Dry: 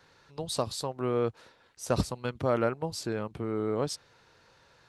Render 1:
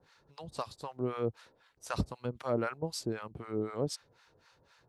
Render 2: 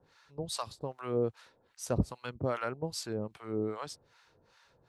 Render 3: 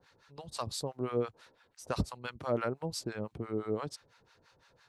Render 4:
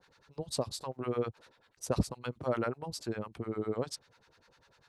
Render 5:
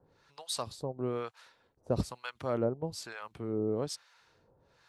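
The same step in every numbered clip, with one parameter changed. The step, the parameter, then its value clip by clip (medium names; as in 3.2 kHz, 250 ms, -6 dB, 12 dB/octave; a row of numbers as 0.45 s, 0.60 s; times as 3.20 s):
harmonic tremolo, rate: 3.9 Hz, 2.5 Hz, 5.9 Hz, 10 Hz, 1.1 Hz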